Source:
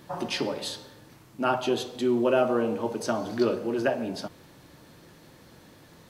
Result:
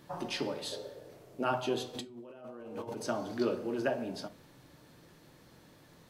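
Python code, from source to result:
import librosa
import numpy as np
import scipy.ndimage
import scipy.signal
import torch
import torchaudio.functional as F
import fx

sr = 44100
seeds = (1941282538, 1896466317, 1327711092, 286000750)

y = fx.band_shelf(x, sr, hz=510.0, db=14.0, octaves=1.1, at=(0.72, 1.43))
y = fx.over_compress(y, sr, threshold_db=-36.0, ratio=-1.0, at=(1.93, 2.96), fade=0.02)
y = fx.room_shoebox(y, sr, seeds[0], volume_m3=140.0, walls='furnished', distance_m=0.36)
y = F.gain(torch.from_numpy(y), -6.5).numpy()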